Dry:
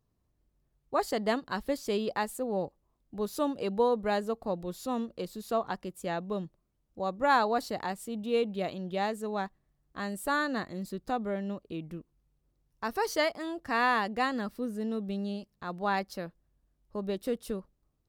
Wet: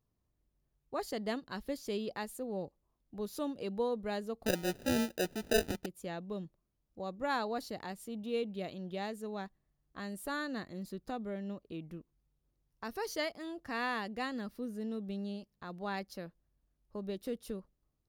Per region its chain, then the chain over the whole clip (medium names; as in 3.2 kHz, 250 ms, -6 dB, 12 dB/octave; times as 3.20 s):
4.46–5.86 s: peaking EQ 380 Hz +11.5 dB 1.9 oct + sample-rate reducer 1.1 kHz
whole clip: band-stop 7.9 kHz, Q 10; dynamic bell 1 kHz, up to -6 dB, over -42 dBFS, Q 0.82; trim -5 dB